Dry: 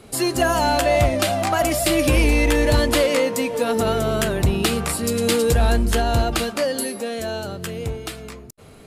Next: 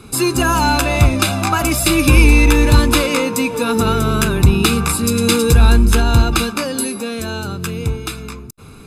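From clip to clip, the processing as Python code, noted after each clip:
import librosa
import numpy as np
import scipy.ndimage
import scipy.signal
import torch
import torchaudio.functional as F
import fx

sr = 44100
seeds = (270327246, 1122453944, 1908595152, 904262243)

y = x + 0.7 * np.pad(x, (int(0.8 * sr / 1000.0), 0))[:len(x)]
y = F.gain(torch.from_numpy(y), 4.0).numpy()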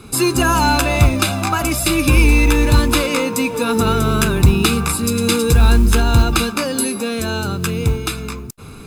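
y = fx.rider(x, sr, range_db=4, speed_s=2.0)
y = fx.mod_noise(y, sr, seeds[0], snr_db=31)
y = F.gain(torch.from_numpy(y), -1.0).numpy()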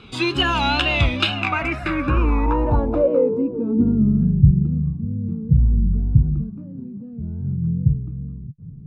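y = fx.wow_flutter(x, sr, seeds[1], rate_hz=2.1, depth_cents=90.0)
y = fx.filter_sweep_lowpass(y, sr, from_hz=3200.0, to_hz=150.0, start_s=1.24, end_s=4.43, q=4.5)
y = F.gain(torch.from_numpy(y), -6.5).numpy()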